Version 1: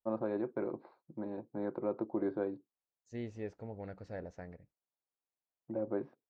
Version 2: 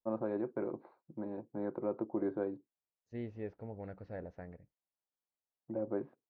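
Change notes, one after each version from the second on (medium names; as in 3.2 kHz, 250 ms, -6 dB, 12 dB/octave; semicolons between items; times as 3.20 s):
master: add distance through air 270 m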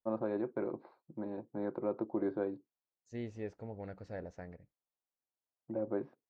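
master: remove distance through air 270 m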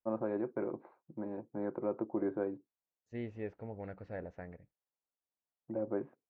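second voice: remove distance through air 240 m; master: add low-pass 2.7 kHz 24 dB/octave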